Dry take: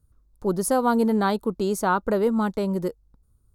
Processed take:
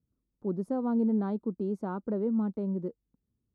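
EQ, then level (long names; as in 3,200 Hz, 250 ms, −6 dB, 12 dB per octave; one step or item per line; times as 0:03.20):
resonant band-pass 220 Hz, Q 1.5
low-shelf EQ 220 Hz −6.5 dB
−1.0 dB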